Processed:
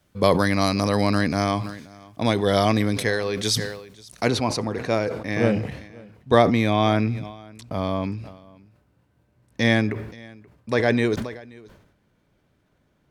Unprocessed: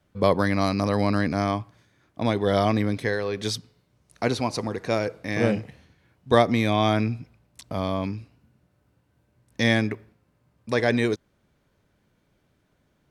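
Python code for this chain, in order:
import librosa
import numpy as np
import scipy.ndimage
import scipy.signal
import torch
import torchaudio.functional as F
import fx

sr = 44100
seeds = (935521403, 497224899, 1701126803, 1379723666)

y = fx.high_shelf(x, sr, hz=3900.0, db=fx.steps((0.0, 9.0), (4.27, -4.0)))
y = y + 10.0 ** (-23.5 / 20.0) * np.pad(y, (int(529 * sr / 1000.0), 0))[:len(y)]
y = fx.sustainer(y, sr, db_per_s=69.0)
y = y * 10.0 ** (1.5 / 20.0)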